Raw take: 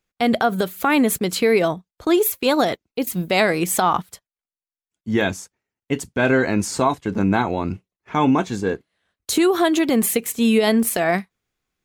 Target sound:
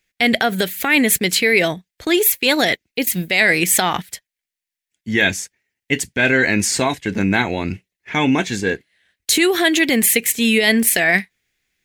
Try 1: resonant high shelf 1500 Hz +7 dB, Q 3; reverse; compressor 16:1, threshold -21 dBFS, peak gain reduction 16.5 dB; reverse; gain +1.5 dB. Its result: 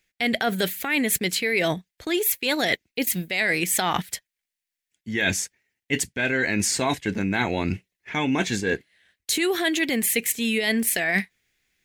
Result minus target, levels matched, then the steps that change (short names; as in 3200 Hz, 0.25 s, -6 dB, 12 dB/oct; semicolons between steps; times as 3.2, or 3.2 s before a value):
compressor: peak gain reduction +9 dB
change: compressor 16:1, threshold -11.5 dBFS, peak gain reduction 7.5 dB